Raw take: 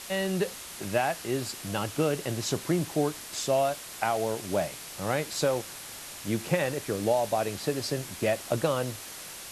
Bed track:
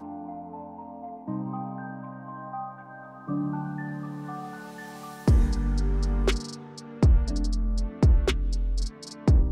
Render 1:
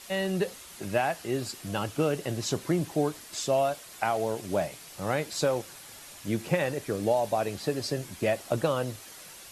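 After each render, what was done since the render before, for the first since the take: denoiser 7 dB, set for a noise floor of -43 dBFS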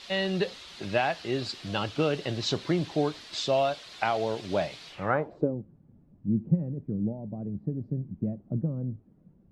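low-pass sweep 4000 Hz -> 200 Hz, 4.88–5.58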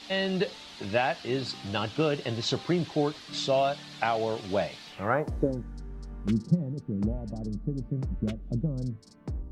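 add bed track -15.5 dB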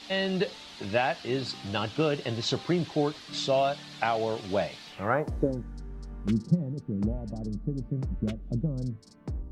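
nothing audible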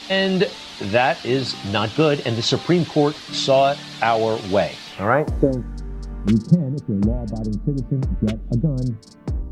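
gain +9.5 dB; limiter -3 dBFS, peak gain reduction 2 dB

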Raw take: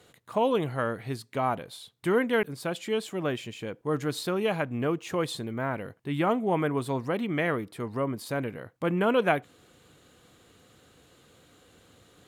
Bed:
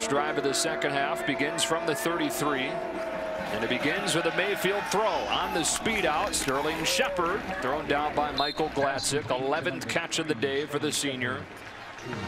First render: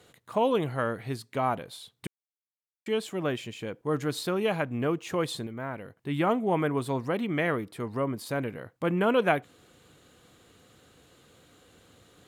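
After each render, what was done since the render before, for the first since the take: 2.07–2.86 mute; 5.47–5.97 gain -5 dB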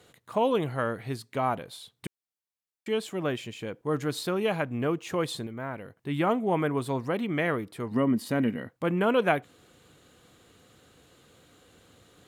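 7.91–8.69 small resonant body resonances 230/1900/2900 Hz, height 13 dB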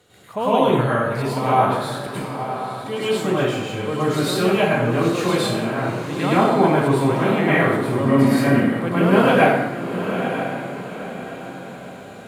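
diffused feedback echo 0.93 s, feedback 43%, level -8.5 dB; plate-style reverb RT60 0.91 s, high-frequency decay 0.75×, pre-delay 90 ms, DRR -10 dB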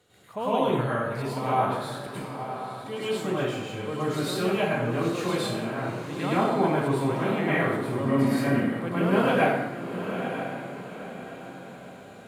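gain -7.5 dB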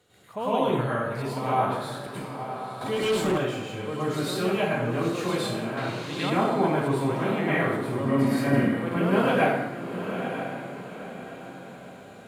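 2.81–3.38 sample leveller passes 2; 5.77–6.3 bell 3900 Hz +10 dB 1.5 oct; 8.48–8.97 doubler 50 ms -2.5 dB

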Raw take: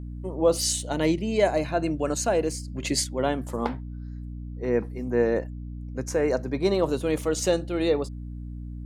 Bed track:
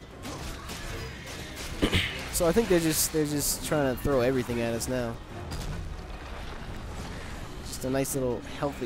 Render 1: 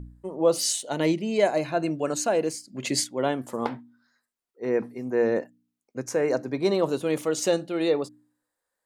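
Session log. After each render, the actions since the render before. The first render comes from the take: de-hum 60 Hz, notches 5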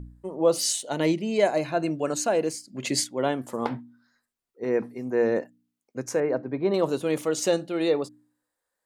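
3.7–4.64 low shelf 220 Hz +8.5 dB; 6.2–6.74 air absorption 440 m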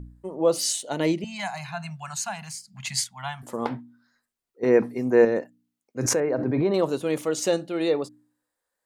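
1.24–3.43 elliptic band-stop 190–790 Hz; 4.63–5.25 gain +6.5 dB; 5.99–6.84 backwards sustainer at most 27 dB/s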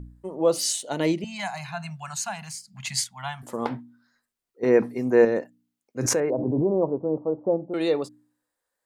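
6.3–7.74 steep low-pass 990 Hz 48 dB/oct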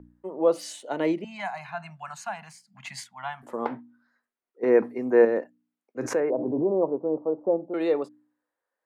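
three-band isolator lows -16 dB, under 220 Hz, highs -15 dB, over 2500 Hz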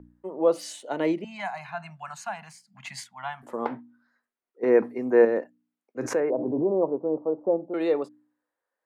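nothing audible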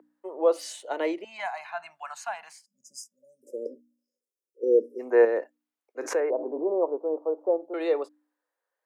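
HPF 370 Hz 24 dB/oct; 2.65–5 spectral delete 590–4900 Hz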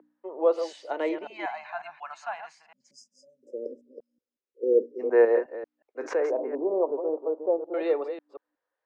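reverse delay 0.182 s, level -9 dB; air absorption 160 m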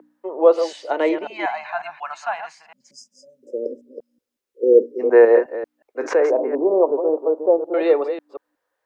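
gain +9 dB; limiter -2 dBFS, peak gain reduction 2 dB

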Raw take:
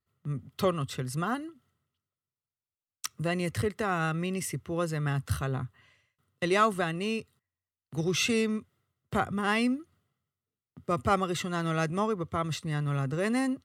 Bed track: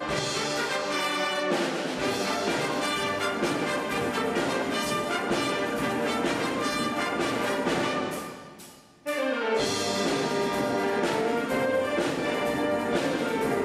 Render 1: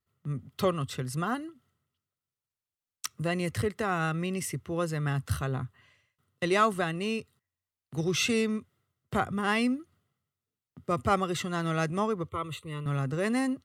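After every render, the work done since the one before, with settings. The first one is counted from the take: 12.29–12.86 fixed phaser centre 1100 Hz, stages 8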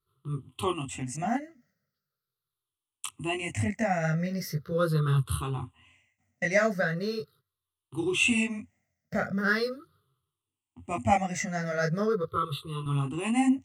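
moving spectral ripple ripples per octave 0.62, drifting -0.4 Hz, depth 22 dB; detuned doubles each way 28 cents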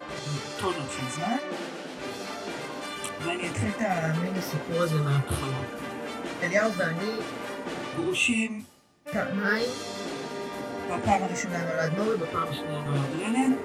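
add bed track -8 dB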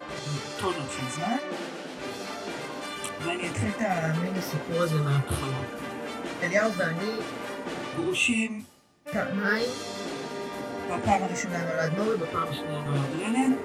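nothing audible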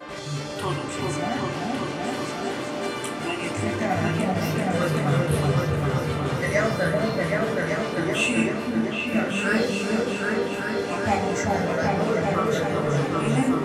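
repeats that get brighter 0.385 s, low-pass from 750 Hz, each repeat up 2 oct, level 0 dB; shoebox room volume 76 m³, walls mixed, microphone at 0.37 m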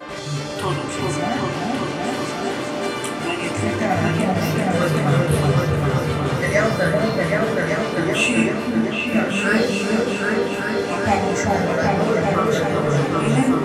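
gain +4.5 dB

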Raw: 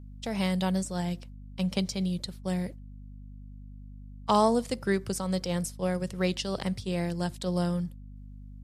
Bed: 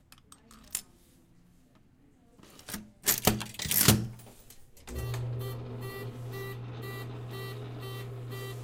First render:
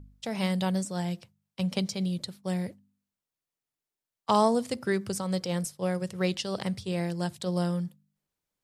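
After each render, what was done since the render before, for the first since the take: de-hum 50 Hz, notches 5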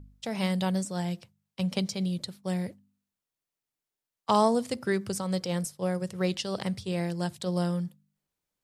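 5.58–6.3 dynamic EQ 2800 Hz, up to -4 dB, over -46 dBFS, Q 1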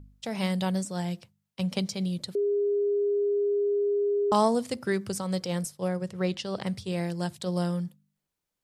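2.35–4.32 bleep 407 Hz -22.5 dBFS; 5.88–6.67 high shelf 5800 Hz -9.5 dB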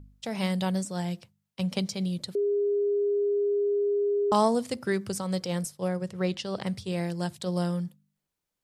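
nothing audible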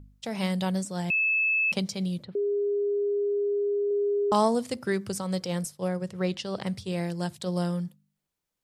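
1.1–1.72 bleep 2610 Hz -21.5 dBFS; 2.23–3.91 air absorption 400 m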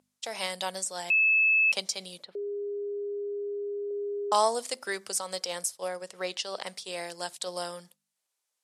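Chebyshev band-pass 630–9900 Hz, order 2; high shelf 3400 Hz +8.5 dB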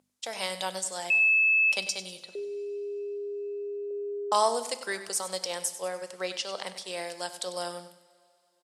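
feedback echo 97 ms, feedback 40%, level -13 dB; two-slope reverb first 0.59 s, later 3.1 s, from -15 dB, DRR 13 dB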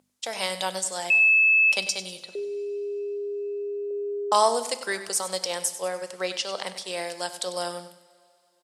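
gain +4 dB

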